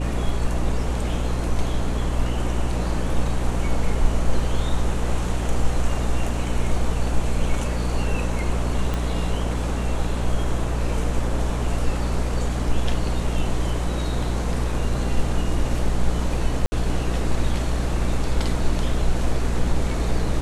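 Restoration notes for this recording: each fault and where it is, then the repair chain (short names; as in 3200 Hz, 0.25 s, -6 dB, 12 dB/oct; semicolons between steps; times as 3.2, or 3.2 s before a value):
hum 60 Hz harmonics 5 -25 dBFS
8.94 pop -13 dBFS
16.66–16.72 gap 60 ms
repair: de-click; de-hum 60 Hz, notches 5; interpolate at 16.66, 60 ms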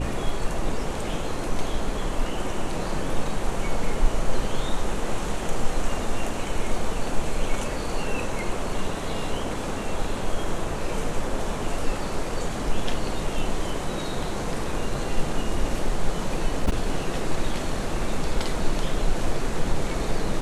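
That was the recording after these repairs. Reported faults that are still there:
8.94 pop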